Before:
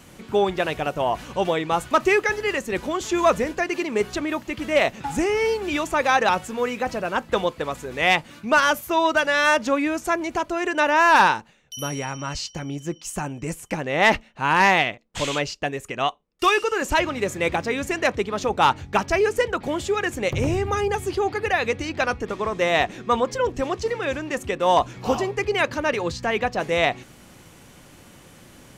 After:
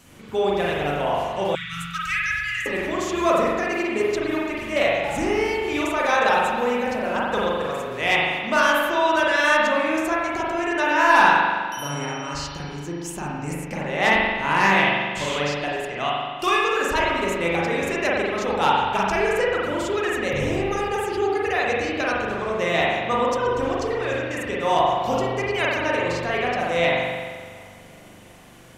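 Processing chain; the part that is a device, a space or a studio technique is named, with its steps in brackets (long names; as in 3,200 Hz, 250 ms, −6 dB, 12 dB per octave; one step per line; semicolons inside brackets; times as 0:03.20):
parametric band 13,000 Hz +4.5 dB 2.6 octaves
dub delay into a spring reverb (feedback echo with a low-pass in the loop 364 ms, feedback 68%, low-pass 3,600 Hz, level −23.5 dB; spring reverb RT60 1.5 s, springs 41 ms, chirp 75 ms, DRR −5 dB)
0:01.55–0:02.66: Chebyshev band-stop filter 170–1,400 Hz, order 4
level −6 dB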